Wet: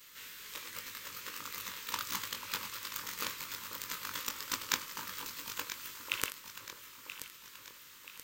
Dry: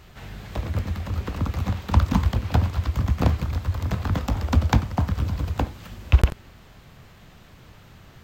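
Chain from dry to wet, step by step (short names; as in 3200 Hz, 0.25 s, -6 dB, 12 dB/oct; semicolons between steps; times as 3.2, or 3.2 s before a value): short-time reversal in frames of 42 ms; HPF 560 Hz 6 dB/oct; differentiator; echo with dull and thin repeats by turns 0.49 s, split 1100 Hz, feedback 71%, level -7 dB; in parallel at -10 dB: sample-rate reducer 6200 Hz, jitter 0%; on the sum: Butterworth band-stop 720 Hz, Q 1.8; gain +9 dB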